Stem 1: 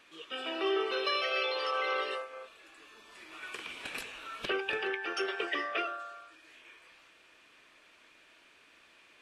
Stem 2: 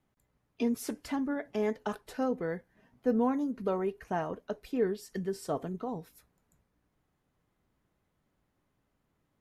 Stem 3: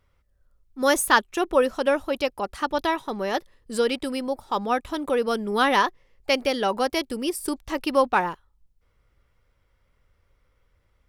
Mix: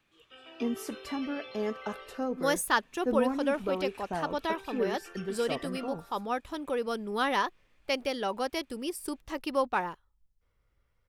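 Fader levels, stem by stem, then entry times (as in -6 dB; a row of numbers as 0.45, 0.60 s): -14.0, -2.0, -8.0 dB; 0.00, 0.00, 1.60 s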